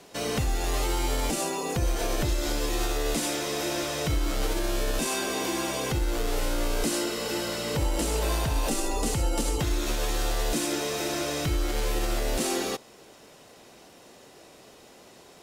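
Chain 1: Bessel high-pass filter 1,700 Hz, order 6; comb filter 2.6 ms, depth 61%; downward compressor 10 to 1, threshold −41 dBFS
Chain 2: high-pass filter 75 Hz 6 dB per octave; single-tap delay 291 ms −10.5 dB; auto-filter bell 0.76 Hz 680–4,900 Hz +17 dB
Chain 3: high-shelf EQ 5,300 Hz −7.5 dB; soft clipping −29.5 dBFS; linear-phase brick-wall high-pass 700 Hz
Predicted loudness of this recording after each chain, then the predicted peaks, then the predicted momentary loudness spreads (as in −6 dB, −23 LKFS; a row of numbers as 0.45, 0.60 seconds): −41.5, −23.5, −39.0 LKFS; −28.0, −9.5, −25.5 dBFS; 12, 4, 19 LU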